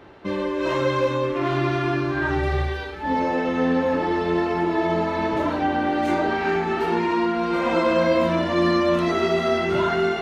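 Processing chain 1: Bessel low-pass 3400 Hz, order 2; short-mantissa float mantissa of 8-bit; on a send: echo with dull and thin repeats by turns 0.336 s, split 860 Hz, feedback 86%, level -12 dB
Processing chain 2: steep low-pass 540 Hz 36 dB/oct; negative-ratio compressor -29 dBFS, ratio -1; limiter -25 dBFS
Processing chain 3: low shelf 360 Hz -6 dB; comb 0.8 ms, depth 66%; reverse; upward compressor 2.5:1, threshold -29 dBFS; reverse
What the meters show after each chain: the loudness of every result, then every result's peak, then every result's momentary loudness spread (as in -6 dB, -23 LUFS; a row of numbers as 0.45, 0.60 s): -22.0, -33.0, -24.0 LUFS; -7.5, -25.0, -11.0 dBFS; 5, 1, 4 LU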